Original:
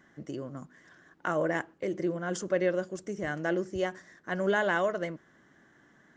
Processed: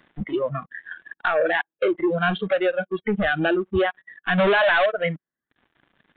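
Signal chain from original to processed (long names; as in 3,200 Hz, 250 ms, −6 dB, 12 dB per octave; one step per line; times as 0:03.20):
reverb reduction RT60 0.91 s
0:04.38–0:04.86: power curve on the samples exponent 0.5
downward compressor 10 to 1, threshold −39 dBFS, peak gain reduction 18.5 dB
leveller curve on the samples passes 5
downsampling to 8,000 Hz
noise reduction from a noise print of the clip's start 19 dB
level +8.5 dB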